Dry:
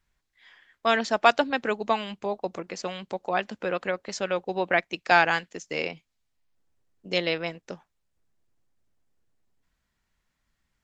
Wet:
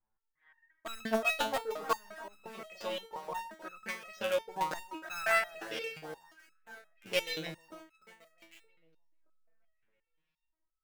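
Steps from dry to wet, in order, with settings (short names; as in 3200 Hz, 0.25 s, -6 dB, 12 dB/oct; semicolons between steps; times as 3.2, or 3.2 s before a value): 5.62–7.21 sample sorter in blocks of 8 samples; echo with dull and thin repeats by turns 0.311 s, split 1700 Hz, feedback 58%, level -11 dB; LFO low-pass saw up 0.67 Hz 870–4100 Hz; in parallel at -10 dB: companded quantiser 2-bit; on the sum: stepped resonator 5.7 Hz 110–1300 Hz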